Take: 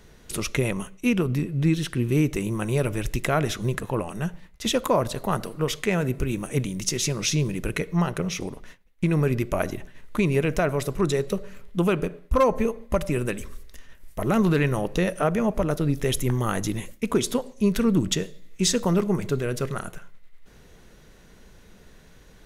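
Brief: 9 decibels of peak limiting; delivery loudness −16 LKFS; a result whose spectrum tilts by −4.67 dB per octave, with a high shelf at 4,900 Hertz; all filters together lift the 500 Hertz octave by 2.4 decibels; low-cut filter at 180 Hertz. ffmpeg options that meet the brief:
ffmpeg -i in.wav -af "highpass=180,equalizer=frequency=500:width_type=o:gain=3,highshelf=frequency=4900:gain=3.5,volume=11.5dB,alimiter=limit=-4dB:level=0:latency=1" out.wav

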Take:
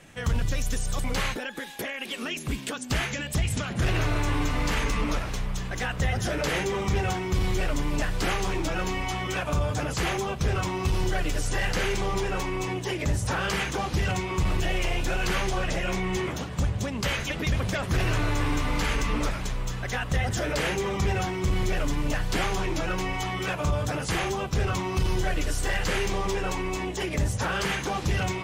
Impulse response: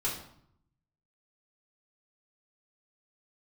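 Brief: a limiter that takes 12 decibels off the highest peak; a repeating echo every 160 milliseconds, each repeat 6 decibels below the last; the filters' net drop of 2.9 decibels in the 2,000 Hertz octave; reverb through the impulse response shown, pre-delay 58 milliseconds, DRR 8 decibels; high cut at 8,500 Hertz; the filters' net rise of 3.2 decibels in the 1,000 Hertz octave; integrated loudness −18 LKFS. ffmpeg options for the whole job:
-filter_complex "[0:a]lowpass=8500,equalizer=frequency=1000:width_type=o:gain=5.5,equalizer=frequency=2000:width_type=o:gain=-5.5,alimiter=level_in=3dB:limit=-24dB:level=0:latency=1,volume=-3dB,aecho=1:1:160|320|480|640|800|960:0.501|0.251|0.125|0.0626|0.0313|0.0157,asplit=2[link_01][link_02];[1:a]atrim=start_sample=2205,adelay=58[link_03];[link_02][link_03]afir=irnorm=-1:irlink=0,volume=-13.5dB[link_04];[link_01][link_04]amix=inputs=2:normalize=0,volume=14.5dB"

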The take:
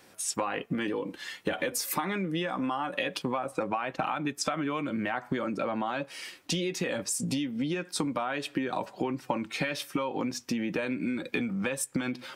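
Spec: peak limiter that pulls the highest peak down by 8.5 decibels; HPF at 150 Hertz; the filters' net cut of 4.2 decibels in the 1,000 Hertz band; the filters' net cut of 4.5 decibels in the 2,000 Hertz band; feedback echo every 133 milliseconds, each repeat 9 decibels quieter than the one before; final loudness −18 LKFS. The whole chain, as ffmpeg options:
ffmpeg -i in.wav -af "highpass=150,equalizer=frequency=1000:width_type=o:gain=-4.5,equalizer=frequency=2000:width_type=o:gain=-4.5,alimiter=limit=-24dB:level=0:latency=1,aecho=1:1:133|266|399|532:0.355|0.124|0.0435|0.0152,volume=16dB" out.wav

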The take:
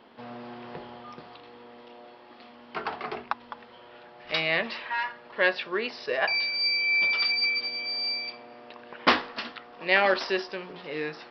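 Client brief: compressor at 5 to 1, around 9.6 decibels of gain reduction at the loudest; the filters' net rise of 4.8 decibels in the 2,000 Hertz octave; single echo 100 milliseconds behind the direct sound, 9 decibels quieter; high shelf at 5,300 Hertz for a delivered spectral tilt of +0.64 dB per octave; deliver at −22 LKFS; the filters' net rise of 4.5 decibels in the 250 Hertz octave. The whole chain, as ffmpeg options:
ffmpeg -i in.wav -af "equalizer=frequency=250:width_type=o:gain=6,equalizer=frequency=2000:width_type=o:gain=4.5,highshelf=frequency=5300:gain=7.5,acompressor=threshold=-23dB:ratio=5,aecho=1:1:100:0.355,volume=4dB" out.wav

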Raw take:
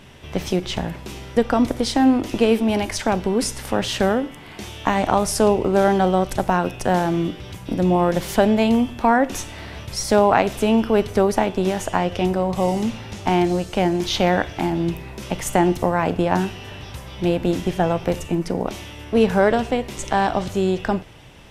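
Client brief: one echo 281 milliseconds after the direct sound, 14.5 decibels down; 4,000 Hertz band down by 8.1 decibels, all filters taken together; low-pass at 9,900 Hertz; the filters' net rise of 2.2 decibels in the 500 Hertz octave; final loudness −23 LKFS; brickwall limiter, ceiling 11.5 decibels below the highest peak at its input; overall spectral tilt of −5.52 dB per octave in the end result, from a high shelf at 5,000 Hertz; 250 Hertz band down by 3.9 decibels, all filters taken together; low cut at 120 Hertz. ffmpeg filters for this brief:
ffmpeg -i in.wav -af "highpass=120,lowpass=9900,equalizer=frequency=250:width_type=o:gain=-6.5,equalizer=frequency=500:width_type=o:gain=5,equalizer=frequency=4000:width_type=o:gain=-7.5,highshelf=frequency=5000:gain=-8.5,alimiter=limit=-13.5dB:level=0:latency=1,aecho=1:1:281:0.188,volume=2dB" out.wav

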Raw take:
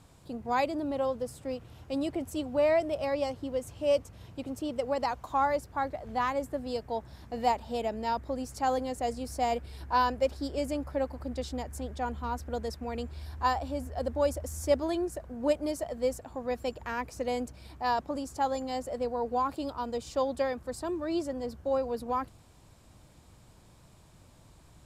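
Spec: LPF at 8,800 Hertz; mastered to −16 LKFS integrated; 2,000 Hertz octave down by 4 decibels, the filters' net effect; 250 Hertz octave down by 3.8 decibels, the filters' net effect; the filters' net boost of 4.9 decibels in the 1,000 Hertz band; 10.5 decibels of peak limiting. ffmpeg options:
ffmpeg -i in.wav -af "lowpass=8800,equalizer=frequency=250:width_type=o:gain=-5,equalizer=frequency=1000:width_type=o:gain=8,equalizer=frequency=2000:width_type=o:gain=-8.5,volume=17dB,alimiter=limit=-4.5dB:level=0:latency=1" out.wav

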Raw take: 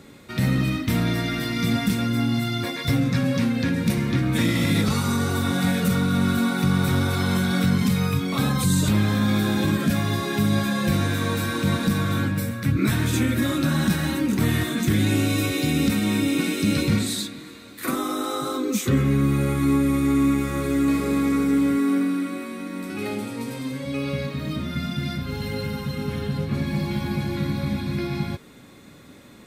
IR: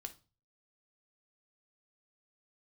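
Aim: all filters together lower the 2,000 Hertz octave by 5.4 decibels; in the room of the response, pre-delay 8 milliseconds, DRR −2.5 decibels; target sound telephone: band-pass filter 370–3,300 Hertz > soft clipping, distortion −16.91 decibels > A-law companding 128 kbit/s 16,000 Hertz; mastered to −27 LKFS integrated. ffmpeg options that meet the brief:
-filter_complex "[0:a]equalizer=frequency=2000:width_type=o:gain=-6.5,asplit=2[link_01][link_02];[1:a]atrim=start_sample=2205,adelay=8[link_03];[link_02][link_03]afir=irnorm=-1:irlink=0,volume=6.5dB[link_04];[link_01][link_04]amix=inputs=2:normalize=0,highpass=370,lowpass=3300,asoftclip=threshold=-17.5dB" -ar 16000 -c:a pcm_alaw

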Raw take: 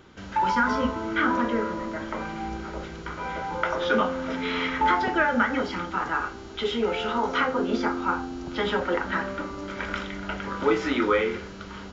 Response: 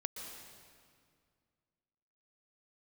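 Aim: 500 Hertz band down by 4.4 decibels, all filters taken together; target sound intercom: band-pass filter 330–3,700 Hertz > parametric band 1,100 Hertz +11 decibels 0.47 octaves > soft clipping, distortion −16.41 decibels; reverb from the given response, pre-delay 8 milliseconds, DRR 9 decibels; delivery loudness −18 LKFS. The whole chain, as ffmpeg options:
-filter_complex "[0:a]equalizer=frequency=500:width_type=o:gain=-4.5,asplit=2[link_01][link_02];[1:a]atrim=start_sample=2205,adelay=8[link_03];[link_02][link_03]afir=irnorm=-1:irlink=0,volume=-8.5dB[link_04];[link_01][link_04]amix=inputs=2:normalize=0,highpass=330,lowpass=3700,equalizer=frequency=1100:width_type=o:width=0.47:gain=11,asoftclip=threshold=-13.5dB,volume=7.5dB"

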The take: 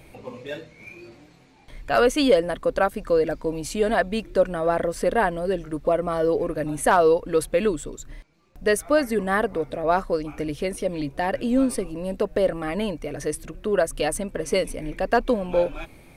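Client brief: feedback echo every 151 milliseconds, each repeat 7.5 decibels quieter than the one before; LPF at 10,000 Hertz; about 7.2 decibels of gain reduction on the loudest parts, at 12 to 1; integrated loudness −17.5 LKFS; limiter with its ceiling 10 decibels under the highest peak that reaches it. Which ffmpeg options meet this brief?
ffmpeg -i in.wav -af "lowpass=10000,acompressor=threshold=-20dB:ratio=12,alimiter=limit=-20dB:level=0:latency=1,aecho=1:1:151|302|453|604|755:0.422|0.177|0.0744|0.0312|0.0131,volume=12dB" out.wav

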